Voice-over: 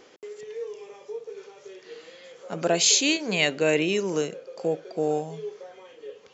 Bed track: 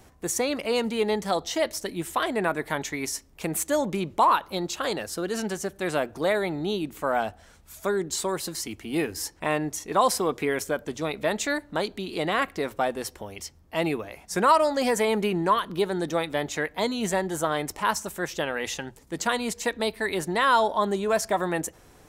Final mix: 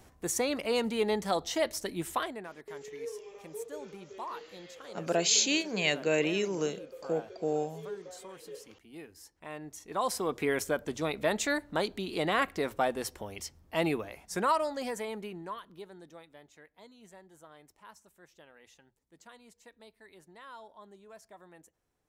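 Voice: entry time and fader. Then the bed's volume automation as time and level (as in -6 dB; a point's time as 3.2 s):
2.45 s, -5.5 dB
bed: 2.15 s -4 dB
2.49 s -20.5 dB
9.27 s -20.5 dB
10.5 s -3 dB
13.98 s -3 dB
16.51 s -28 dB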